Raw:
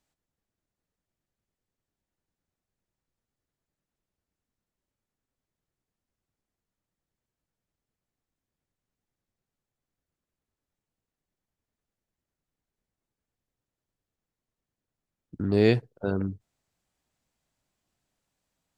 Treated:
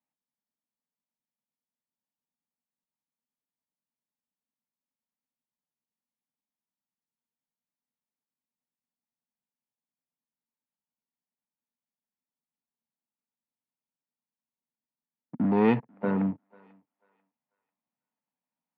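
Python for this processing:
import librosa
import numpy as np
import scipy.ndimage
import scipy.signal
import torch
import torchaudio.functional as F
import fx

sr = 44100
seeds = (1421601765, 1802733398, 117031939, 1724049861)

y = fx.peak_eq(x, sr, hz=480.0, db=-3.0, octaves=2.7)
y = fx.leveller(y, sr, passes=3)
y = fx.cabinet(y, sr, low_hz=160.0, low_slope=24, high_hz=2400.0, hz=(240.0, 360.0, 910.0, 1500.0), db=(8, -8, 8, -5))
y = fx.echo_thinned(y, sr, ms=492, feedback_pct=27, hz=600.0, wet_db=-23.5)
y = F.gain(torch.from_numpy(y), -4.5).numpy()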